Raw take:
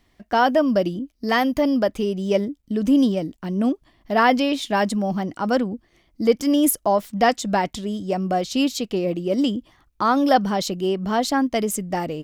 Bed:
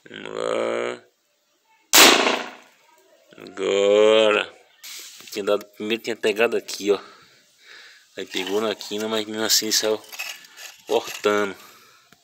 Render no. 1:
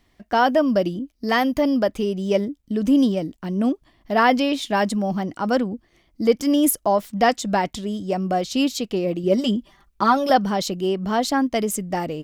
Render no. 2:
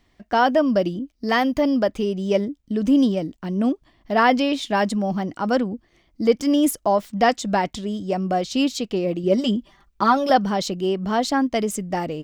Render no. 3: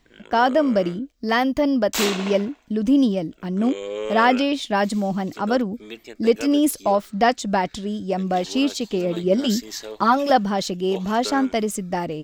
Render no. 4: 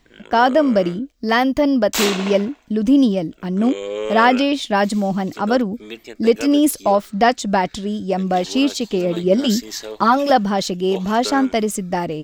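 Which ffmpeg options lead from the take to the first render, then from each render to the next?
ffmpeg -i in.wav -filter_complex "[0:a]asettb=1/sr,asplit=3[link_01][link_02][link_03];[link_01]atrim=end=9.234[link_04];[link_02]atrim=start=9.23:end=10.3,asetpts=PTS-STARTPTS,afade=type=in:duration=0.004:curve=qsin,afade=type=out:start_time=1.066:duration=0.004:curve=qsin,aecho=1:1:5.1:0.76,atrim=end_sample=47187[link_05];[link_03]atrim=start=10.296[link_06];[link_04][link_05]acrossfade=duration=0.004:curve1=hsin:curve2=qsin[link_07];[link_07][link_06]acrossfade=duration=0.004:curve1=qsin:curve2=hsin" out.wav
ffmpeg -i in.wav -af "equalizer=frequency=12000:width_type=o:width=0.61:gain=-8.5" out.wav
ffmpeg -i in.wav -i bed.wav -filter_complex "[1:a]volume=-13dB[link_01];[0:a][link_01]amix=inputs=2:normalize=0" out.wav
ffmpeg -i in.wav -af "volume=3.5dB,alimiter=limit=-3dB:level=0:latency=1" out.wav

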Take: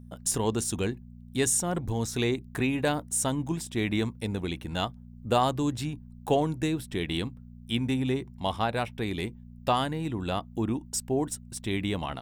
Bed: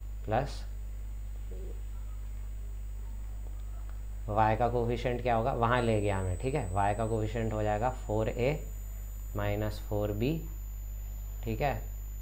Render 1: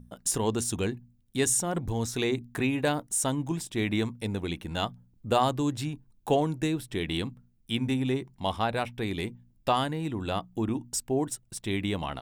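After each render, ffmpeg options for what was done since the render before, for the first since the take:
ffmpeg -i in.wav -af "bandreject=frequency=60:width_type=h:width=4,bandreject=frequency=120:width_type=h:width=4,bandreject=frequency=180:width_type=h:width=4,bandreject=frequency=240:width_type=h:width=4" out.wav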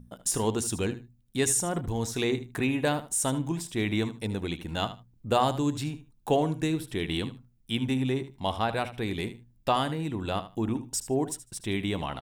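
ffmpeg -i in.wav -af "aecho=1:1:76|152:0.211|0.0359" out.wav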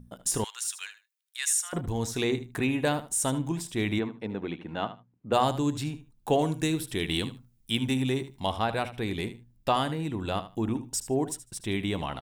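ffmpeg -i in.wav -filter_complex "[0:a]asettb=1/sr,asplit=3[link_01][link_02][link_03];[link_01]atrim=end=0.444[link_04];[link_02]atrim=start=0.44:end=1.73,asetpts=PTS-STARTPTS,afade=type=in:duration=0.004:curve=qsin,afade=type=out:start_time=1.286:duration=0.004:curve=qsin,highpass=frequency=1400:width=0.5412,highpass=frequency=1400:width=1.3066[link_05];[link_03]atrim=start=1.726[link_06];[link_04][link_05]acrossfade=duration=0.004:curve1=hsin:curve2=qsin[link_07];[link_07][link_06]acrossfade=duration=0.004:curve1=qsin:curve2=hsin,asplit=3[link_08][link_09][link_10];[link_08]afade=type=out:start_time=3.98:duration=0.02[link_11];[link_09]highpass=170,lowpass=2200,afade=type=in:start_time=3.98:duration=0.02,afade=type=out:start_time=5.32:duration=0.02[link_12];[link_10]afade=type=in:start_time=5.32:duration=0.02[link_13];[link_11][link_12][link_13]amix=inputs=3:normalize=0,asettb=1/sr,asplit=3[link_14][link_15][link_16];[link_14]atrim=end=6.394[link_17];[link_15]atrim=start=6.39:end=8.46,asetpts=PTS-STARTPTS,afade=type=in:duration=0.004:curve=qsin,afade=type=out:start_time=2.066:duration=0.004:curve=qsin,highshelf=frequency=3400:gain=7.5[link_18];[link_16]atrim=start=8.456[link_19];[link_17][link_18]acrossfade=duration=0.004:curve1=hsin:curve2=qsin[link_20];[link_20][link_19]acrossfade=duration=0.004:curve1=qsin:curve2=hsin" out.wav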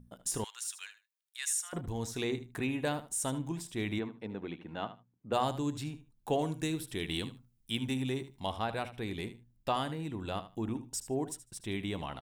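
ffmpeg -i in.wav -af "volume=-6.5dB" out.wav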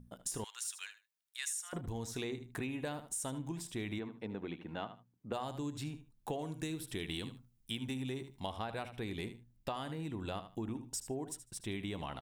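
ffmpeg -i in.wav -af "acompressor=threshold=-36dB:ratio=6" out.wav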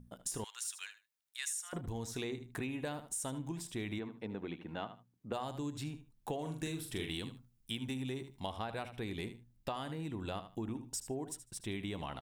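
ffmpeg -i in.wav -filter_complex "[0:a]asettb=1/sr,asplit=3[link_01][link_02][link_03];[link_01]atrim=end=6.414[link_04];[link_02]atrim=start=6.41:end=7.1,asetpts=PTS-STARTPTS,afade=type=in:duration=0.004:curve=qsin,afade=type=out:start_time=0.686:duration=0.004:curve=qsin,asplit=2[link_05][link_06];[link_06]adelay=43,volume=-5dB[link_07];[link_05][link_07]amix=inputs=2:normalize=0,atrim=end_sample=30429[link_08];[link_03]atrim=start=7.096[link_09];[link_04][link_08]acrossfade=duration=0.004:curve1=hsin:curve2=qsin[link_10];[link_10][link_09]acrossfade=duration=0.004:curve1=qsin:curve2=hsin" out.wav

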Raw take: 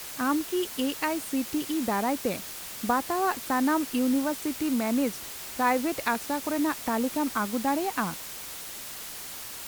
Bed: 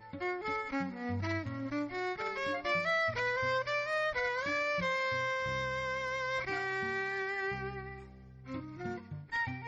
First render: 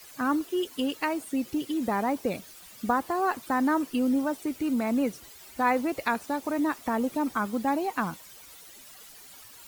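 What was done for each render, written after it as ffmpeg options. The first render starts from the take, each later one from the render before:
ffmpeg -i in.wav -af "afftdn=noise_reduction=13:noise_floor=-40" out.wav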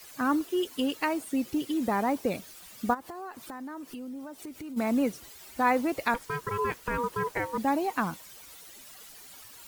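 ffmpeg -i in.wav -filter_complex "[0:a]asplit=3[link_01][link_02][link_03];[link_01]afade=type=out:start_time=2.93:duration=0.02[link_04];[link_02]acompressor=threshold=-39dB:ratio=5:attack=3.2:release=140:knee=1:detection=peak,afade=type=in:start_time=2.93:duration=0.02,afade=type=out:start_time=4.76:duration=0.02[link_05];[link_03]afade=type=in:start_time=4.76:duration=0.02[link_06];[link_04][link_05][link_06]amix=inputs=3:normalize=0,asettb=1/sr,asplit=3[link_07][link_08][link_09];[link_07]atrim=end=6.144[link_10];[link_08]atrim=start=6.14:end=7.58,asetpts=PTS-STARTPTS,afade=type=in:duration=0.004:curve=qsin,afade=type=out:start_time=1.436:duration=0.004:curve=qsin,aeval=exprs='val(0)*sin(2*PI*720*n/s)':channel_layout=same[link_11];[link_09]atrim=start=7.576[link_12];[link_10][link_11]acrossfade=duration=0.004:curve1=hsin:curve2=qsin[link_13];[link_13][link_12]acrossfade=duration=0.004:curve1=qsin:curve2=hsin" out.wav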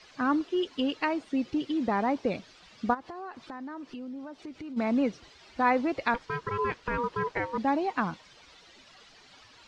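ffmpeg -i in.wav -af "lowpass=frequency=5000:width=0.5412,lowpass=frequency=5000:width=1.3066" out.wav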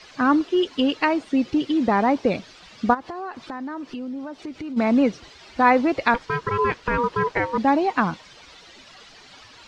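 ffmpeg -i in.wav -af "volume=8dB" out.wav

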